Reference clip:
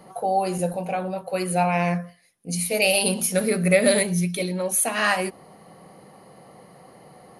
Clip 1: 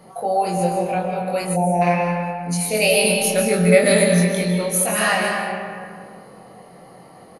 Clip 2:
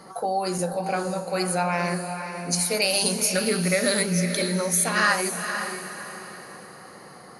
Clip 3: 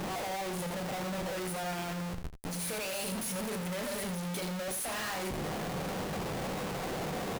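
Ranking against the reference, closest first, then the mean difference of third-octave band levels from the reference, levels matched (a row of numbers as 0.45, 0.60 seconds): 1, 2, 3; 5.0, 7.5, 16.0 decibels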